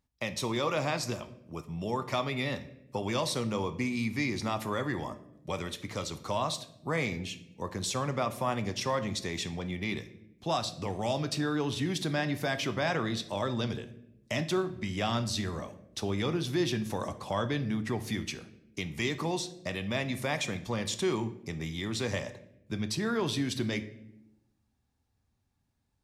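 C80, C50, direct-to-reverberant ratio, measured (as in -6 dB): 17.0 dB, 14.0 dB, 9.0 dB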